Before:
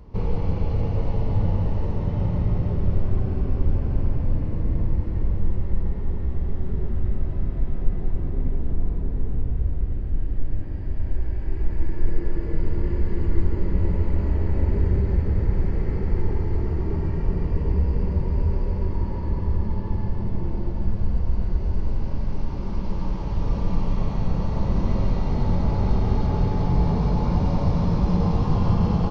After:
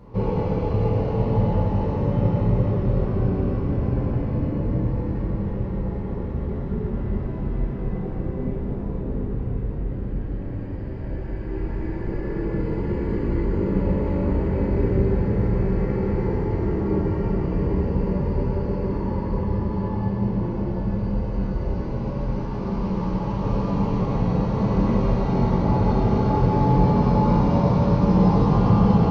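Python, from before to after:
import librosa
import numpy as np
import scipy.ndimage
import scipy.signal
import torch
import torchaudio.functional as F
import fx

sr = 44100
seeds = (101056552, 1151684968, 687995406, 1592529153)

y = fx.highpass(x, sr, hz=170.0, slope=6)
y = fx.high_shelf(y, sr, hz=2200.0, db=-9.0)
y = fx.rev_gated(y, sr, seeds[0], gate_ms=200, shape='falling', drr_db=-3.0)
y = y * librosa.db_to_amplitude(3.5)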